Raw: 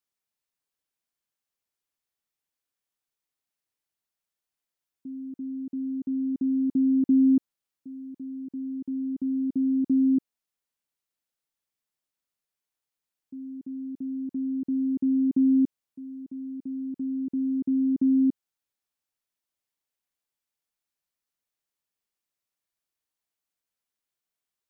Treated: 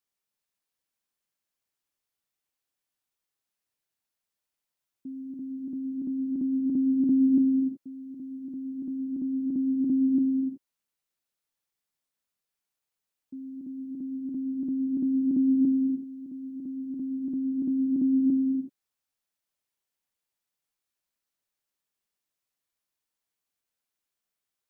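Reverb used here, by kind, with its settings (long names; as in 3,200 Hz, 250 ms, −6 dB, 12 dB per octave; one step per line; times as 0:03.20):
reverb whose tail is shaped and stops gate 400 ms flat, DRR 5 dB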